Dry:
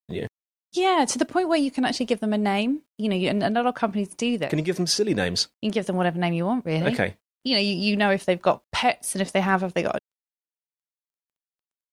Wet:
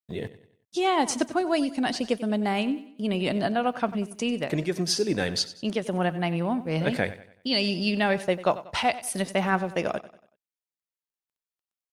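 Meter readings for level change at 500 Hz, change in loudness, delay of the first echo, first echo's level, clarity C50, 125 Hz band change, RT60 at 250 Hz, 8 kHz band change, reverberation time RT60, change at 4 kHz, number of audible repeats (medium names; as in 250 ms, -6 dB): -3.0 dB, -3.0 dB, 94 ms, -16.0 dB, no reverb, -3.0 dB, no reverb, -3.0 dB, no reverb, -3.0 dB, 3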